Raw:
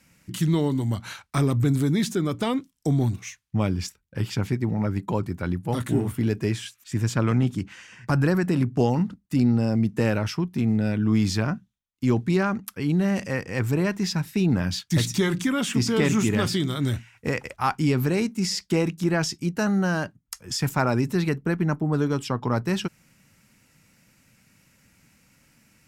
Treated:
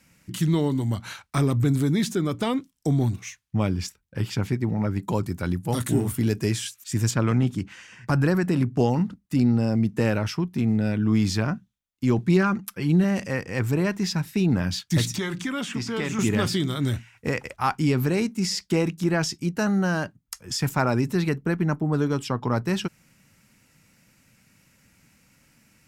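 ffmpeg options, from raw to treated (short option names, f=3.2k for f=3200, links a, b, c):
-filter_complex "[0:a]asettb=1/sr,asplit=3[a][b][c];[a]atrim=end=5.024[d];[b]atrim=start=5.02:end=7.11,asetpts=PTS-STARTPTS,afade=t=in:d=0.004:c=qsin,afade=t=out:st=2.086:d=0.004:c=qsin,bass=f=250:g=1,treble=f=4k:g=9[e];[c]atrim=start=7.106[f];[d][e]acrossfade=d=0.004:c1=hsin:c2=qsin[g];[g][f]acrossfade=d=0.004:c1=qsin:c2=hsin,asettb=1/sr,asplit=3[h][i][j];[h]atrim=end=12.184[k];[i]atrim=start=12.18:end=13.04,asetpts=PTS-STARTPTS,afade=t=in:d=0.004:c=qsin,afade=t=out:st=0.856:d=0.004:c=qsin,aecho=1:1:5.8:0.49,atrim=end_sample=37926[l];[j]atrim=start=13.036[m];[k][l]acrossfade=d=0.004:c1=hsin:c2=qsin[n];[n][m]acrossfade=d=0.004:c1=qsin:c2=hsin,asettb=1/sr,asplit=3[o][p][q];[o]atrim=end=15.164[r];[p]atrim=start=15.16:end=16.19,asetpts=PTS-STARTPTS,afade=t=in:d=0.004:c=qsin,afade=t=out:st=1.026:d=0.004:c=qsin,acrossover=split=730|2400|7900[s][t][u][v];[s]acompressor=threshold=-29dB:ratio=3[w];[t]acompressor=threshold=-33dB:ratio=3[x];[u]acompressor=threshold=-38dB:ratio=3[y];[v]acompressor=threshold=-56dB:ratio=3[z];[w][x][y][z]amix=inputs=4:normalize=0[aa];[q]atrim=start=16.186[ab];[r][aa]acrossfade=d=0.004:c1=hsin:c2=qsin[ac];[ac][ab]acrossfade=d=0.004:c1=qsin:c2=hsin"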